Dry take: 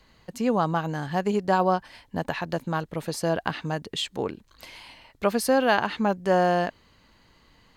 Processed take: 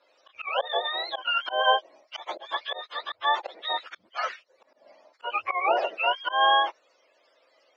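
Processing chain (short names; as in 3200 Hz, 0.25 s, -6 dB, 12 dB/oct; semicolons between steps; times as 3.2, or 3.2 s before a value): spectrum mirrored in octaves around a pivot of 760 Hz; auto swell 0.164 s; elliptic band-pass 540–5400 Hz, stop band 50 dB; gain +4 dB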